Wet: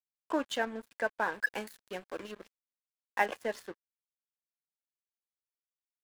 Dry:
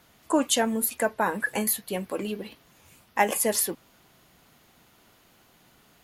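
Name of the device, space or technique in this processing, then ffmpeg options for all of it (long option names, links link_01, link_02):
pocket radio on a weak battery: -filter_complex "[0:a]highpass=270,lowpass=3700,aeval=exprs='sgn(val(0))*max(abs(val(0))-0.0112,0)':channel_layout=same,equalizer=frequency=1600:width_type=o:width=0.31:gain=6.5,asettb=1/sr,asplit=3[link_01][link_02][link_03];[link_01]atrim=end=1.334[link_04];[link_02]atrim=start=1.33:end=3.26,asetpts=PTS-STARTPTS,afade=type=in:duration=0.004:curve=qsin,afade=type=out:start_time=1.926:duration=0.004:curve=qsin,highshelf=frequency=7000:gain=10.5[link_05];[link_03]atrim=start=3.256[link_06];[link_04][link_05]acrossfade=duration=0.004:curve1=hsin:curve2=qsin[link_07];[link_07][link_06]acrossfade=duration=0.004:curve1=qsin:curve2=hsin,volume=-6.5dB"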